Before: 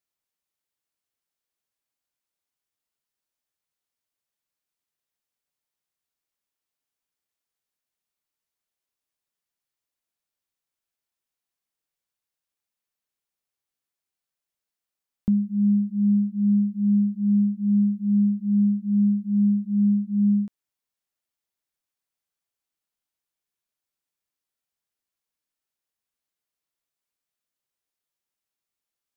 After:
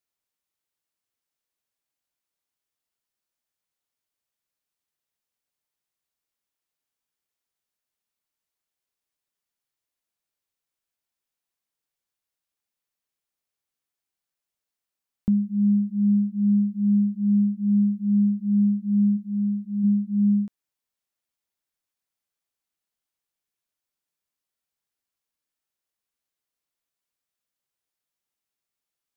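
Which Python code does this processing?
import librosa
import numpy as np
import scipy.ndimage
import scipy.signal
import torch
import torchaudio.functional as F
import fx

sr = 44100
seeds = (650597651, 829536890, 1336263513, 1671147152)

y = fx.low_shelf(x, sr, hz=220.0, db=-8.5, at=(19.16, 19.83), fade=0.02)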